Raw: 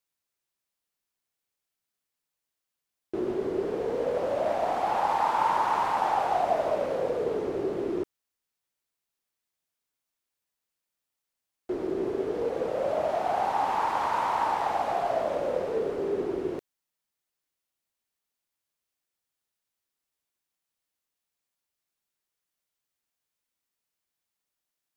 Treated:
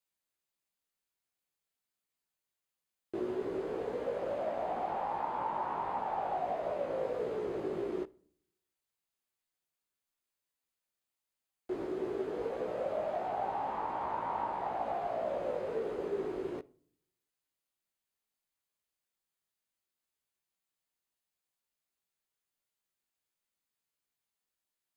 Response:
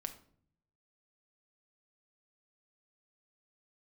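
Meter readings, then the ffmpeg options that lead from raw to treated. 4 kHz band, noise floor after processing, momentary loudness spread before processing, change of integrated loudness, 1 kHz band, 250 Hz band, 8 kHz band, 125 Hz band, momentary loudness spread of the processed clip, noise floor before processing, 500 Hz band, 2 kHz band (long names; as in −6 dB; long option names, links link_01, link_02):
−12.5 dB, below −85 dBFS, 6 LU, −8.0 dB, −9.0 dB, −6.5 dB, can't be measured, −6.5 dB, 3 LU, below −85 dBFS, −7.0 dB, −10.5 dB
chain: -filter_complex "[0:a]acrossover=split=3300[link_01][link_02];[link_02]acompressor=threshold=-59dB:ratio=4:attack=1:release=60[link_03];[link_01][link_03]amix=inputs=2:normalize=0,bandreject=frequency=5600:width=12,acrossover=split=750|1600[link_04][link_05][link_06];[link_04]acompressor=threshold=-31dB:ratio=4[link_07];[link_05]acompressor=threshold=-40dB:ratio=4[link_08];[link_06]acompressor=threshold=-52dB:ratio=4[link_09];[link_07][link_08][link_09]amix=inputs=3:normalize=0,flanger=delay=16:depth=3:speed=1.5,asplit=2[link_10][link_11];[1:a]atrim=start_sample=2205[link_12];[link_11][link_12]afir=irnorm=-1:irlink=0,volume=-7dB[link_13];[link_10][link_13]amix=inputs=2:normalize=0,volume=-3dB"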